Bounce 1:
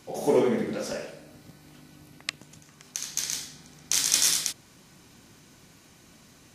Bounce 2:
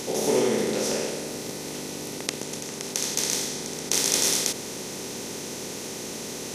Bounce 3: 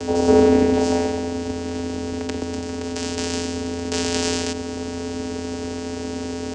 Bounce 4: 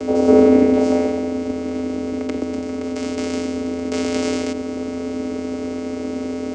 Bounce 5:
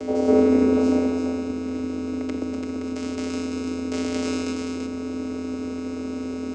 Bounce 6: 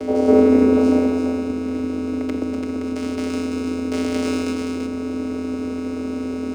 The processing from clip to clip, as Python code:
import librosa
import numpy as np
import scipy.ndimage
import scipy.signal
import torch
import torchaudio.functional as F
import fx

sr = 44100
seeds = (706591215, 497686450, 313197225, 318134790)

y1 = fx.bin_compress(x, sr, power=0.4)
y1 = y1 * librosa.db_to_amplitude(-3.5)
y2 = fx.vocoder(y1, sr, bands=8, carrier='square', carrier_hz=86.0)
y2 = y2 * librosa.db_to_amplitude(7.5)
y3 = fx.small_body(y2, sr, hz=(320.0, 540.0, 1200.0, 2100.0), ring_ms=20, db=14)
y3 = y3 * librosa.db_to_amplitude(-7.0)
y4 = y3 + 10.0 ** (-4.5 / 20.0) * np.pad(y3, (int(338 * sr / 1000.0), 0))[:len(y3)]
y4 = y4 * librosa.db_to_amplitude(-5.5)
y5 = np.interp(np.arange(len(y4)), np.arange(len(y4))[::3], y4[::3])
y5 = y5 * librosa.db_to_amplitude(4.0)